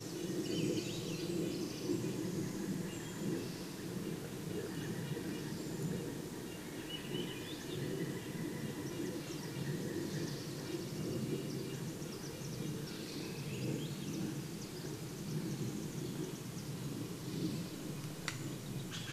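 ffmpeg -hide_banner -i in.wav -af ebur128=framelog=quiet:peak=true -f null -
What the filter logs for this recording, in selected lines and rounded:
Integrated loudness:
  I:         -41.5 LUFS
  Threshold: -51.5 LUFS
Loudness range:
  LRA:         2.2 LU
  Threshold: -61.7 LUFS
  LRA low:   -42.4 LUFS
  LRA high:  -40.2 LUFS
True peak:
  Peak:      -19.8 dBFS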